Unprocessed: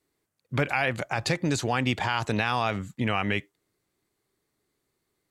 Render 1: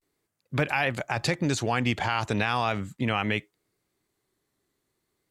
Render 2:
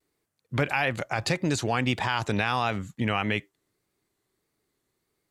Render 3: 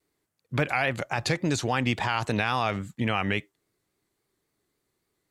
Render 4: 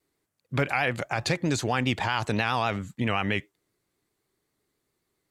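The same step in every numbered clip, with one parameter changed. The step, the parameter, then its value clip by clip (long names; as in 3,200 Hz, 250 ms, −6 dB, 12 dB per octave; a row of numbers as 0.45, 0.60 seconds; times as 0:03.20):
pitch vibrato, speed: 0.38, 1.6, 3.6, 7.6 Hertz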